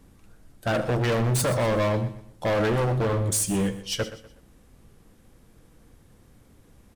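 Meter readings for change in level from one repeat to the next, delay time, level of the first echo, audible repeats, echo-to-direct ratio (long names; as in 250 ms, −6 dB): repeats not evenly spaced, 76 ms, −21.0 dB, 4, −13.0 dB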